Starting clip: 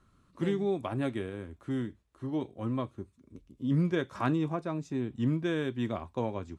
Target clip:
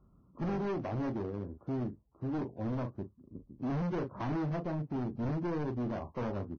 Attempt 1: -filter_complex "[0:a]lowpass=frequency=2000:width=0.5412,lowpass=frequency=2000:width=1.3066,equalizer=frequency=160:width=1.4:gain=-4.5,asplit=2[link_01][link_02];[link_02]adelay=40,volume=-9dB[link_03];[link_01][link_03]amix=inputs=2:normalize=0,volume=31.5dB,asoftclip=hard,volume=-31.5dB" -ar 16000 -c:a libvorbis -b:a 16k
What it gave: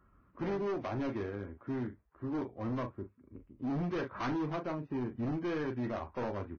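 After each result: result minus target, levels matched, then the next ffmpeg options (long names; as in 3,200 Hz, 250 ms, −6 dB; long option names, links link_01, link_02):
2,000 Hz band +4.5 dB; 125 Hz band −3.5 dB
-filter_complex "[0:a]lowpass=frequency=970:width=0.5412,lowpass=frequency=970:width=1.3066,equalizer=frequency=160:width=1.4:gain=-4.5,asplit=2[link_01][link_02];[link_02]adelay=40,volume=-9dB[link_03];[link_01][link_03]amix=inputs=2:normalize=0,volume=31.5dB,asoftclip=hard,volume=-31.5dB" -ar 16000 -c:a libvorbis -b:a 16k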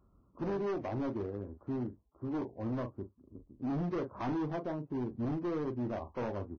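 125 Hz band −3.0 dB
-filter_complex "[0:a]lowpass=frequency=970:width=0.5412,lowpass=frequency=970:width=1.3066,equalizer=frequency=160:width=1.4:gain=4,asplit=2[link_01][link_02];[link_02]adelay=40,volume=-9dB[link_03];[link_01][link_03]amix=inputs=2:normalize=0,volume=31.5dB,asoftclip=hard,volume=-31.5dB" -ar 16000 -c:a libvorbis -b:a 16k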